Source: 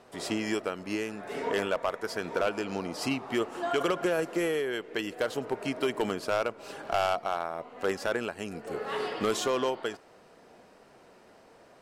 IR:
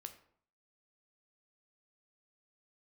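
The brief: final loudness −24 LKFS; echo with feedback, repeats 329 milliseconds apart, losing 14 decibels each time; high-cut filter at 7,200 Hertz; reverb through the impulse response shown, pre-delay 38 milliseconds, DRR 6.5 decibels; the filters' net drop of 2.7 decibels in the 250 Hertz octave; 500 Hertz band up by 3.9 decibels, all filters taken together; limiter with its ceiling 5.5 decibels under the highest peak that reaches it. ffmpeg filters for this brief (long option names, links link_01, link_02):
-filter_complex "[0:a]lowpass=7200,equalizer=frequency=250:width_type=o:gain=-8,equalizer=frequency=500:width_type=o:gain=7,alimiter=limit=-19.5dB:level=0:latency=1,aecho=1:1:329|658:0.2|0.0399,asplit=2[link_01][link_02];[1:a]atrim=start_sample=2205,adelay=38[link_03];[link_02][link_03]afir=irnorm=-1:irlink=0,volume=-1.5dB[link_04];[link_01][link_04]amix=inputs=2:normalize=0,volume=6dB"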